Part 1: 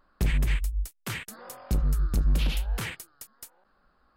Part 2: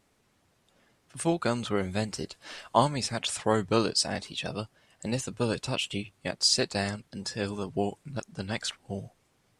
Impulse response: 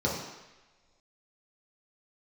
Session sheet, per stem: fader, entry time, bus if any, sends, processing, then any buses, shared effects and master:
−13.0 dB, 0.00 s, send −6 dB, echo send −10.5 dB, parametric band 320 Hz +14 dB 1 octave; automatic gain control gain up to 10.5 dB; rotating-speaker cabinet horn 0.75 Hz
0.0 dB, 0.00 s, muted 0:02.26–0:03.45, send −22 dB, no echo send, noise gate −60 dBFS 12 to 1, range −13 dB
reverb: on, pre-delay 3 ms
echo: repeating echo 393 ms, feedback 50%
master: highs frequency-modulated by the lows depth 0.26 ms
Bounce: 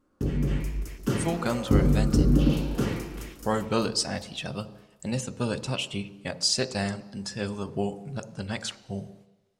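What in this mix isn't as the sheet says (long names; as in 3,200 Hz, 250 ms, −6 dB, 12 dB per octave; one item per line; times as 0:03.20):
stem 1: missing rotating-speaker cabinet horn 0.75 Hz
master: missing highs frequency-modulated by the lows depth 0.26 ms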